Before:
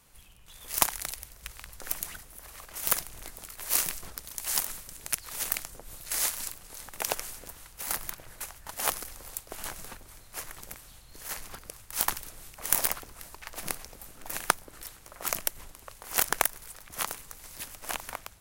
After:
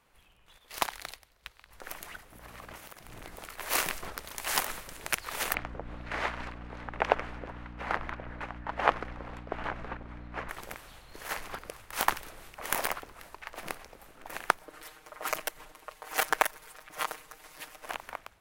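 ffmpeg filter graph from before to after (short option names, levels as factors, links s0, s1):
-filter_complex "[0:a]asettb=1/sr,asplit=3[s0][s1][s2];[s0]atrim=end=0.584[s3];[s1]atrim=start=0.58:end=1.71,asetpts=PTS-STARTPTS,afade=t=in:d=0.004:c=qsin,afade=t=out:st=1.126:d=0.004:c=qsin,agate=range=0.355:threshold=0.00708:ratio=16:release=100:detection=peak,equalizer=f=4100:w=1.8:g=6[s4];[s2]atrim=start=1.706[s5];[s3][s4]acrossfade=d=0.004:c1=hsin:c2=qsin[s6];[s6][s5]acrossfade=d=0.004:c1=qsin:c2=hsin,asettb=1/sr,asplit=3[s7][s8][s9];[s7]atrim=end=2.314[s10];[s8]atrim=start=2.31:end=3.36,asetpts=PTS-STARTPTS,afade=t=in:d=0.004:c=qsin,afade=t=out:st=1.046:d=0.004:c=qsin,aeval=exprs='val(0)+0.002*(sin(2*PI*60*n/s)+sin(2*PI*2*60*n/s)/2+sin(2*PI*3*60*n/s)/3+sin(2*PI*4*60*n/s)/4+sin(2*PI*5*60*n/s)/5)':c=same,equalizer=f=140:t=o:w=2.7:g=6,acompressor=threshold=0.01:ratio=12:attack=3.2:release=140:knee=1:detection=peak[s11];[s9]atrim=start=3.356[s12];[s10][s11]acrossfade=d=0.004:c1=hsin:c2=qsin[s13];[s13][s12]acrossfade=d=0.004:c1=qsin:c2=hsin,asettb=1/sr,asplit=3[s14][s15][s16];[s14]atrim=end=5.544[s17];[s15]atrim=start=5.54:end=10.49,asetpts=PTS-STARTPTS,afade=t=in:d=0.004:c=qsin,afade=t=out:st=4.946:d=0.004:c=qsin,aeval=exprs='val(0)+0.00562*(sin(2*PI*60*n/s)+sin(2*PI*2*60*n/s)/2+sin(2*PI*3*60*n/s)/3+sin(2*PI*4*60*n/s)/4+sin(2*PI*5*60*n/s)/5)':c=same,lowpass=2200[s18];[s16]atrim=start=10.486[s19];[s17][s18]acrossfade=d=0.004:c1=hsin:c2=qsin[s20];[s20][s19]acrossfade=d=0.004:c1=qsin:c2=hsin,asettb=1/sr,asplit=3[s21][s22][s23];[s21]atrim=end=14.594[s24];[s22]atrim=start=14.59:end=17.86,asetpts=PTS-STARTPTS,afade=t=in:d=0.004:c=qsin,afade=t=out:st=3.266:d=0.004:c=qsin,bass=f=250:g=-6,treble=f=4000:g=2,aecho=1:1:6.5:0.93,atrim=end_sample=144207[s25];[s23]atrim=start=17.856[s26];[s24][s25]acrossfade=d=0.004:c1=hsin:c2=qsin[s27];[s27][s26]acrossfade=d=0.004:c1=qsin:c2=hsin,bass=f=250:g=-8,treble=f=4000:g=-14,dynaudnorm=f=680:g=7:m=3.55,volume=0.891"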